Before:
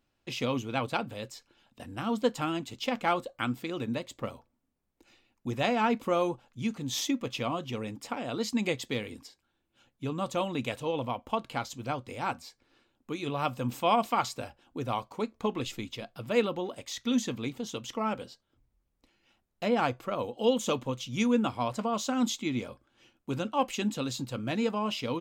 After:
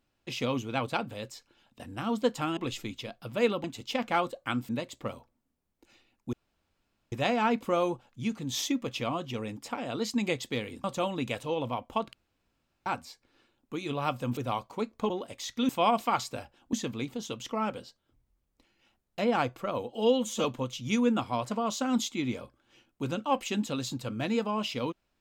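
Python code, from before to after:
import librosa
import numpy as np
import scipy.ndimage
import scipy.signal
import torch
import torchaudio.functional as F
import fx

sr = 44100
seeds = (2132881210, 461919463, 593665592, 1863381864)

y = fx.edit(x, sr, fx.cut(start_s=3.62, length_s=0.25),
    fx.insert_room_tone(at_s=5.51, length_s=0.79),
    fx.cut(start_s=9.23, length_s=0.98),
    fx.room_tone_fill(start_s=11.5, length_s=0.73),
    fx.move(start_s=13.74, length_s=1.04, to_s=17.17),
    fx.move(start_s=15.51, length_s=1.07, to_s=2.57),
    fx.stretch_span(start_s=20.39, length_s=0.33, factor=1.5), tone=tone)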